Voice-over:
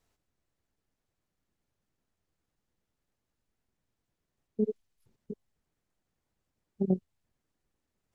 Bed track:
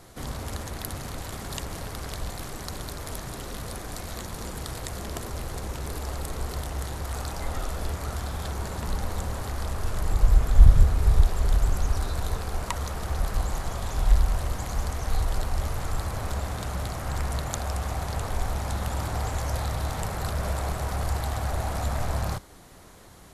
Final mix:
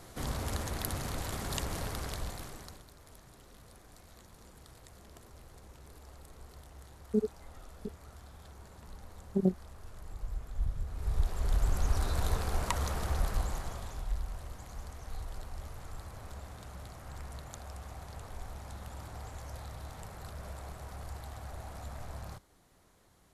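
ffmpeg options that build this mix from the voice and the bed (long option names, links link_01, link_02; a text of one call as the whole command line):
ffmpeg -i stem1.wav -i stem2.wav -filter_complex "[0:a]adelay=2550,volume=0dB[link_01];[1:a]volume=16.5dB,afade=type=out:start_time=1.85:duration=0.99:silence=0.11885,afade=type=in:start_time=10.84:duration=1.4:silence=0.125893,afade=type=out:start_time=12.92:duration=1.15:silence=0.211349[link_02];[link_01][link_02]amix=inputs=2:normalize=0" out.wav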